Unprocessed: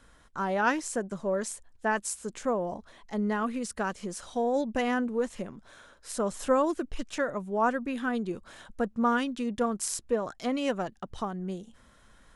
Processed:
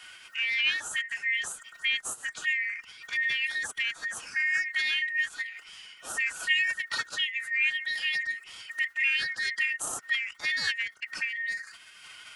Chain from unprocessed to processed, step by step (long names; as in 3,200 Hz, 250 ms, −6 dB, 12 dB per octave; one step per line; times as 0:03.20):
band-splitting scrambler in four parts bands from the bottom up 4123
phase-vocoder pitch shift with formants kept +4 semitones
multiband upward and downward compressor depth 40%